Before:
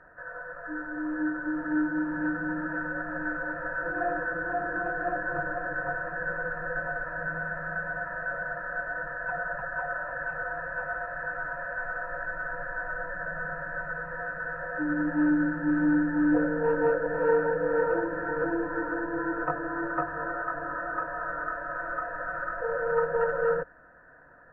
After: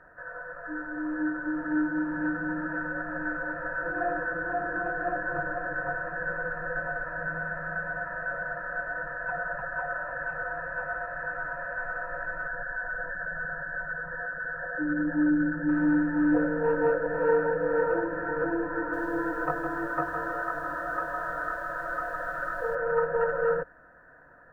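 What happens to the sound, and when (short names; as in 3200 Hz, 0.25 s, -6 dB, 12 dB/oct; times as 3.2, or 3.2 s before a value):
12.48–15.69 formant sharpening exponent 1.5
18.77–22.75 lo-fi delay 0.16 s, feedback 35%, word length 9-bit, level -8 dB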